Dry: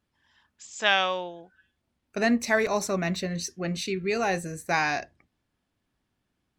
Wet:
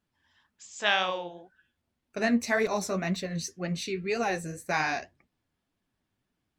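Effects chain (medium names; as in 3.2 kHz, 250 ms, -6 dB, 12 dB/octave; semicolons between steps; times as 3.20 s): flange 1.9 Hz, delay 4.1 ms, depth 9.1 ms, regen +40%; trim +1 dB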